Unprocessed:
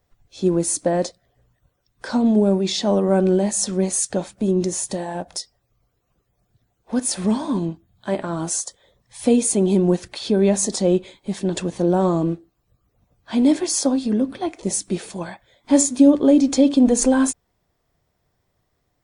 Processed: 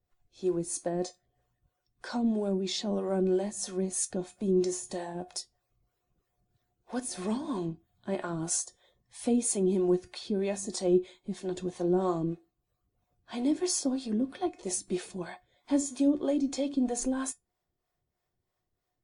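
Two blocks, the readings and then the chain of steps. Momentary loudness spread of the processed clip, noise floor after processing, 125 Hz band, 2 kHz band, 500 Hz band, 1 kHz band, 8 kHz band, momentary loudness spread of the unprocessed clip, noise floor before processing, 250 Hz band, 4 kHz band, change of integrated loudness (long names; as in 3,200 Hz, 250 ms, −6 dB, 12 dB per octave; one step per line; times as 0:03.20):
12 LU, −83 dBFS, −12.0 dB, −11.0 dB, −10.0 dB, −10.5 dB, −10.5 dB, 13 LU, −71 dBFS, −11.5 dB, −10.0 dB, −11.0 dB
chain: tuned comb filter 360 Hz, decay 0.17 s, harmonics all, mix 70%
speech leveller within 3 dB 2 s
two-band tremolo in antiphase 3.1 Hz, depth 70%, crossover 430 Hz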